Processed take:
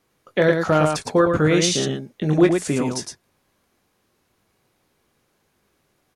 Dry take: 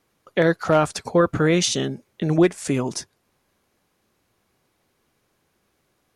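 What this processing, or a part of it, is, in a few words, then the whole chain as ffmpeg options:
slapback doubling: -filter_complex "[0:a]asplit=3[link_01][link_02][link_03];[link_02]adelay=20,volume=-8dB[link_04];[link_03]adelay=111,volume=-5dB[link_05];[link_01][link_04][link_05]amix=inputs=3:normalize=0"

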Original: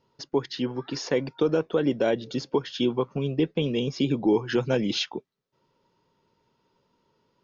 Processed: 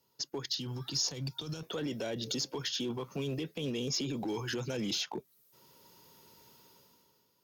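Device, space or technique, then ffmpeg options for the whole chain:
FM broadcast chain: -filter_complex "[0:a]highpass=46,dynaudnorm=framelen=110:gausssize=13:maxgain=15dB,acrossover=split=160|1200[link_01][link_02][link_03];[link_01]acompressor=threshold=-33dB:ratio=4[link_04];[link_02]acompressor=threshold=-20dB:ratio=4[link_05];[link_03]acompressor=threshold=-33dB:ratio=4[link_06];[link_04][link_05][link_06]amix=inputs=3:normalize=0,aemphasis=mode=production:type=50fm,alimiter=limit=-20.5dB:level=0:latency=1:release=23,asoftclip=type=hard:threshold=-22dB,lowpass=frequency=15000:width=0.5412,lowpass=frequency=15000:width=1.3066,aemphasis=mode=production:type=50fm,asettb=1/sr,asplit=3[link_07][link_08][link_09];[link_07]atrim=end=0.494[link_10];[link_08]atrim=start=0.49:end=1.63,asetpts=PTS-STARTPTS,afade=type=in:duration=0.004:curve=qsin,afade=type=out:start_time=1.136:duration=0.004:curve=qsin,equalizer=frequency=125:width_type=o:width=1:gain=6,equalizer=frequency=250:width_type=o:width=1:gain=-5,equalizer=frequency=500:width_type=o:width=1:gain=-10,equalizer=frequency=1000:width_type=o:width=1:gain=-3,equalizer=frequency=2000:width_type=o:width=1:gain=-9,equalizer=frequency=4000:width_type=o:width=1:gain=4[link_11];[link_09]atrim=start=1.626[link_12];[link_10][link_11]acrossfade=duration=0.004:curve1=hsin:curve2=qsin[link_13];[link_13][link_12]acrossfade=duration=0.004:curve1=qsin:curve2=hsin,volume=-7.5dB"

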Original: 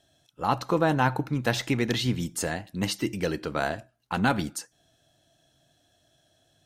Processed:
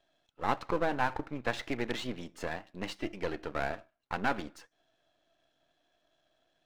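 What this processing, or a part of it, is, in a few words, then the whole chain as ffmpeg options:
crystal radio: -af "highpass=310,lowpass=3000,aeval=exprs='if(lt(val(0),0),0.251*val(0),val(0))':channel_layout=same,volume=-1.5dB"

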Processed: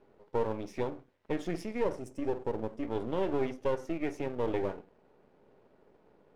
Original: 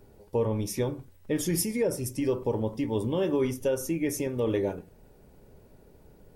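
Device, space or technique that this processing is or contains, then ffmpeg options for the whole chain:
crystal radio: -filter_complex "[0:a]asettb=1/sr,asplit=3[link_01][link_02][link_03];[link_01]atrim=end=1.984[link_04];[link_02]atrim=start=1.98:end=2.83,asetpts=PTS-STARTPTS,afade=type=in:duration=0.004:curve=qsin,afade=type=out:start_time=0.846:duration=0.004:curve=qsin,equalizer=frequency=1000:width_type=o:width=1:gain=-7,equalizer=frequency=2000:width_type=o:width=1:gain=-4,equalizer=frequency=4000:width_type=o:width=1:gain=-12,equalizer=frequency=8000:width_type=o:width=1:gain=11[link_05];[link_03]atrim=start=2.826[link_06];[link_04][link_05]acrossfade=duration=0.004:curve1=hsin:curve2=qsin[link_07];[link_07][link_06]acrossfade=duration=0.004:curve1=qsin:curve2=hsin,highpass=270,lowpass=2600,aeval=exprs='if(lt(val(0),0),0.251*val(0),val(0))':channel_layout=same"

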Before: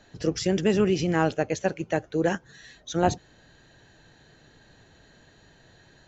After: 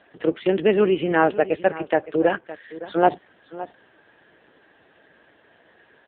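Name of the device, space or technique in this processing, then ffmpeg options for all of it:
satellite phone: -af "highpass=320,lowpass=3400,aecho=1:1:564:0.158,volume=7.5dB" -ar 8000 -c:a libopencore_amrnb -b:a 5900

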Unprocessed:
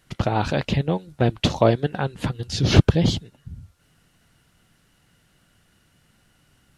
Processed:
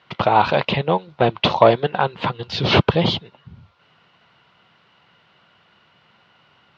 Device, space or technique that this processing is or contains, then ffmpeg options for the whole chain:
overdrive pedal into a guitar cabinet: -filter_complex "[0:a]asplit=2[link_01][link_02];[link_02]highpass=frequency=720:poles=1,volume=15dB,asoftclip=type=tanh:threshold=-1dB[link_03];[link_01][link_03]amix=inputs=2:normalize=0,lowpass=frequency=3200:poles=1,volume=-6dB,highpass=100,equalizer=frequency=280:width_type=q:width=4:gain=-8,equalizer=frequency=1000:width_type=q:width=4:gain=6,equalizer=frequency=1700:width_type=q:width=4:gain=-6,lowpass=frequency=4100:width=0.5412,lowpass=frequency=4100:width=1.3066,volume=1.5dB"

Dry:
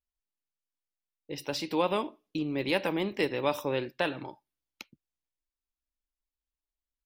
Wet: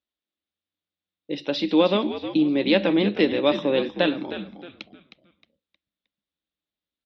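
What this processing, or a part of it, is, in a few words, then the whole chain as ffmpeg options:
frequency-shifting delay pedal into a guitar cabinet: -filter_complex "[0:a]asplit=5[link_01][link_02][link_03][link_04][link_05];[link_02]adelay=312,afreqshift=-89,volume=-11dB[link_06];[link_03]adelay=624,afreqshift=-178,volume=-20.4dB[link_07];[link_04]adelay=936,afreqshift=-267,volume=-29.7dB[link_08];[link_05]adelay=1248,afreqshift=-356,volume=-39.1dB[link_09];[link_01][link_06][link_07][link_08][link_09]amix=inputs=5:normalize=0,highpass=110,equalizer=frequency=120:width_type=q:width=4:gain=-9,equalizer=frequency=200:width_type=q:width=4:gain=8,equalizer=frequency=310:width_type=q:width=4:gain=8,equalizer=frequency=550:width_type=q:width=4:gain=5,equalizer=frequency=930:width_type=q:width=4:gain=-5,equalizer=frequency=3600:width_type=q:width=4:gain=9,lowpass=frequency=4300:width=0.5412,lowpass=frequency=4300:width=1.3066,volume=4.5dB"

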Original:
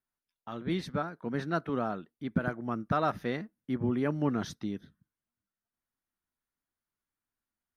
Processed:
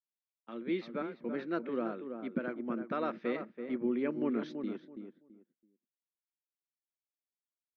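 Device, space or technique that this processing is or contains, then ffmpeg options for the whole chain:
kitchen radio: -filter_complex "[0:a]highpass=180,highpass=200,equalizer=frequency=230:width_type=q:width=4:gain=8,equalizer=frequency=350:width_type=q:width=4:gain=9,equalizer=frequency=520:width_type=q:width=4:gain=8,equalizer=frequency=750:width_type=q:width=4:gain=-5,equalizer=frequency=2300:width_type=q:width=4:gain=9,lowpass=frequency=4300:width=0.5412,lowpass=frequency=4300:width=1.3066,agate=range=-17dB:threshold=-44dB:ratio=16:detection=peak,asplit=2[link_01][link_02];[link_02]adelay=331,lowpass=frequency=1300:poles=1,volume=-7dB,asplit=2[link_03][link_04];[link_04]adelay=331,lowpass=frequency=1300:poles=1,volume=0.23,asplit=2[link_05][link_06];[link_06]adelay=331,lowpass=frequency=1300:poles=1,volume=0.23[link_07];[link_01][link_03][link_05][link_07]amix=inputs=4:normalize=0,volume=-7.5dB"

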